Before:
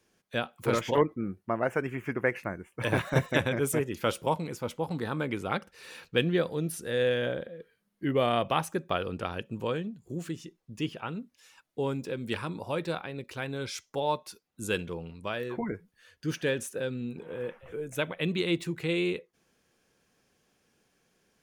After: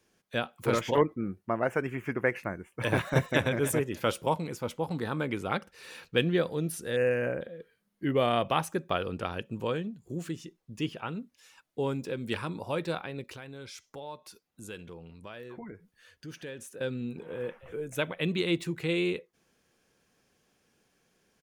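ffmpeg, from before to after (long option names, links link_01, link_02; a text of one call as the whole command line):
ffmpeg -i in.wav -filter_complex "[0:a]asplit=2[link_01][link_02];[link_02]afade=type=in:start_time=3.06:duration=0.01,afade=type=out:start_time=3.49:duration=0.01,aecho=0:1:300|600:0.199526|0.0399052[link_03];[link_01][link_03]amix=inputs=2:normalize=0,asettb=1/sr,asplit=3[link_04][link_05][link_06];[link_04]atrim=end=6.964[link_07];[link_05]atrim=start=6.96:end=7.41,asetpts=PTS-STARTPTS,afade=type=in:duration=0.004:curve=qsin,afade=type=out:start_time=0.446:duration=0.004:curve=qsin,asuperstop=centerf=3700:order=12:qfactor=1.9[link_08];[link_06]atrim=start=7.406[link_09];[link_07][link_08]acrossfade=duration=0.004:curve1=hsin:curve2=qsin[link_10];[link_10][link_09]acrossfade=duration=0.004:curve1=qsin:curve2=hsin,asettb=1/sr,asplit=3[link_11][link_12][link_13];[link_11]atrim=end=13.364[link_14];[link_12]atrim=start=13.36:end=16.81,asetpts=PTS-STARTPTS,afade=type=in:duration=0.004:curve=qsin,afade=type=out:start_time=3.446:duration=0.004:curve=qsin,acompressor=threshold=-48dB:ratio=2:attack=3.2:release=140:knee=1:detection=peak[link_15];[link_13]atrim=start=16.806[link_16];[link_14][link_15]acrossfade=duration=0.004:curve1=hsin:curve2=qsin[link_17];[link_17][link_16]acrossfade=duration=0.004:curve1=qsin:curve2=hsin" out.wav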